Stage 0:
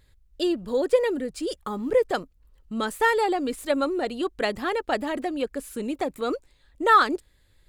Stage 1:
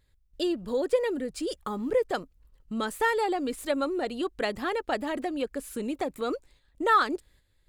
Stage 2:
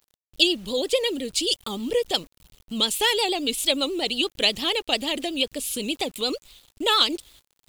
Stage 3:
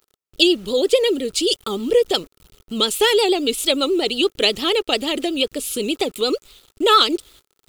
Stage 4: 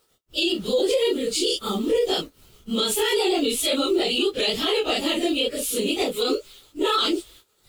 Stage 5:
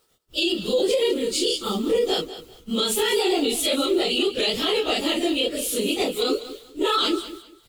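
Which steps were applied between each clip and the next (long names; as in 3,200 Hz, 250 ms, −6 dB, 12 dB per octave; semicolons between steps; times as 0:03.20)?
noise gate −55 dBFS, range −8 dB; in parallel at −0.5 dB: downward compressor, threshold −31 dBFS, peak gain reduction 17.5 dB; on the sum: level −6 dB
pitch vibrato 8.5 Hz 95 cents; high shelf with overshoot 2,200 Hz +11.5 dB, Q 3; bit reduction 9 bits; level +2 dB
hollow resonant body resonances 400/1,300 Hz, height 9 dB, ringing for 20 ms; level +2.5 dB
random phases in long frames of 100 ms; brickwall limiter −13.5 dBFS, peak gain reduction 10.5 dB
repeating echo 197 ms, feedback 24%, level −14 dB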